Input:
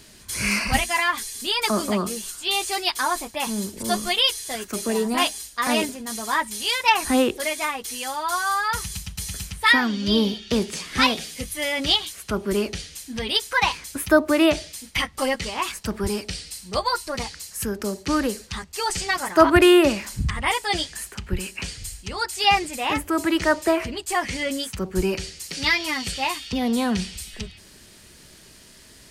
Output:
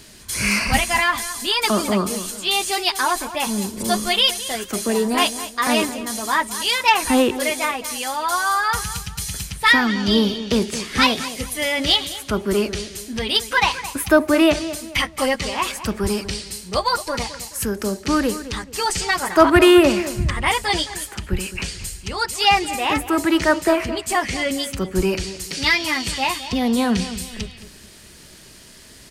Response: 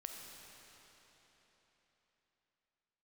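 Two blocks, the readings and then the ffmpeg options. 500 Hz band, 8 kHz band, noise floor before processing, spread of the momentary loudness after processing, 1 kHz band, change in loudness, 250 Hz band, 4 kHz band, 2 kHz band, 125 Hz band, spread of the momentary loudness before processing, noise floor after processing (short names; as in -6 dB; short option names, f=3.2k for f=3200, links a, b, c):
+3.0 dB, +3.5 dB, -49 dBFS, 10 LU, +3.0 dB, +3.0 dB, +3.5 dB, +3.0 dB, +3.0 dB, +3.5 dB, 12 LU, -44 dBFS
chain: -filter_complex "[0:a]asplit=2[a][b];[b]asoftclip=type=tanh:threshold=-16dB,volume=-5dB[c];[a][c]amix=inputs=2:normalize=0,asplit=2[d][e];[e]adelay=215,lowpass=f=2.8k:p=1,volume=-13dB,asplit=2[f][g];[g]adelay=215,lowpass=f=2.8k:p=1,volume=0.35,asplit=2[h][i];[i]adelay=215,lowpass=f=2.8k:p=1,volume=0.35[j];[d][f][h][j]amix=inputs=4:normalize=0"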